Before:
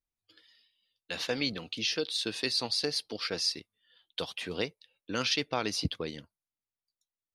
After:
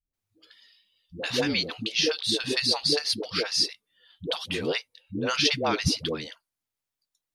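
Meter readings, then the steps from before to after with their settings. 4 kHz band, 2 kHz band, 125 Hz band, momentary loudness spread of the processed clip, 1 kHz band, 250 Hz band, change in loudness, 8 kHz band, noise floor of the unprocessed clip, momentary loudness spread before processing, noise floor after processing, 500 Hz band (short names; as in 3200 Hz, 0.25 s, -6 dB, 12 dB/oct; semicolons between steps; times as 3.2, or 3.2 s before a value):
+6.0 dB, +6.0 dB, +6.0 dB, 10 LU, +6.0 dB, +6.0 dB, +6.0 dB, +6.0 dB, under -85 dBFS, 10 LU, under -85 dBFS, +6.0 dB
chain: dispersion highs, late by 0.137 s, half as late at 380 Hz; gain +6 dB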